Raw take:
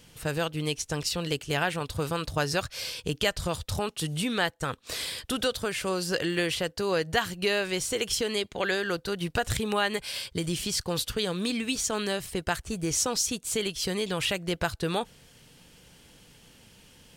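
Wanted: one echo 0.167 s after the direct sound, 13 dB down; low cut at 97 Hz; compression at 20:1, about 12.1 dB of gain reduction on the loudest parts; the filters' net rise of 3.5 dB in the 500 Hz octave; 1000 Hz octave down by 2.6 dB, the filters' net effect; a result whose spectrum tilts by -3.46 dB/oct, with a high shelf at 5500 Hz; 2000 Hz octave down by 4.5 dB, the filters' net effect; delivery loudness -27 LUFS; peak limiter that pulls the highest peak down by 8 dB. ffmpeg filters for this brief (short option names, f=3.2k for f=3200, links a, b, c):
-af "highpass=97,equalizer=f=500:t=o:g=5.5,equalizer=f=1k:t=o:g=-5,equalizer=f=2k:t=o:g=-5,highshelf=f=5.5k:g=3,acompressor=threshold=-32dB:ratio=20,alimiter=level_in=3.5dB:limit=-24dB:level=0:latency=1,volume=-3.5dB,aecho=1:1:167:0.224,volume=10.5dB"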